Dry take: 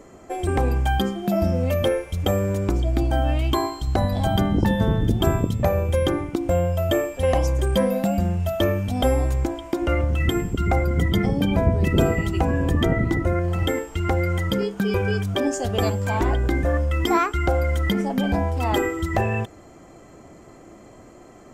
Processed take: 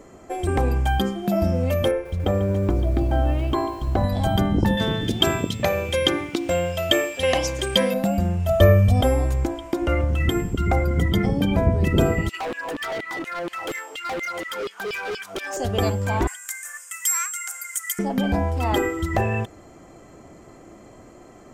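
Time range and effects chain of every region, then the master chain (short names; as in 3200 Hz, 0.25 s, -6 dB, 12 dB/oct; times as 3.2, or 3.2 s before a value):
1.91–4.04 LPF 1800 Hz 6 dB/oct + lo-fi delay 0.143 s, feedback 80%, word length 7-bit, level -15 dB
4.77–7.94 weighting filter D + requantised 10-bit, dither none
8.49–9.01 low shelf 420 Hz +7 dB + comb 1.7 ms, depth 79%
12.29–15.57 LFO high-pass saw down 4.2 Hz 310–3300 Hz + hard clip -26 dBFS
16.27–17.99 inverse Chebyshev high-pass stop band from 270 Hz, stop band 80 dB + resonant high shelf 5500 Hz +13.5 dB, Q 3
whole clip: dry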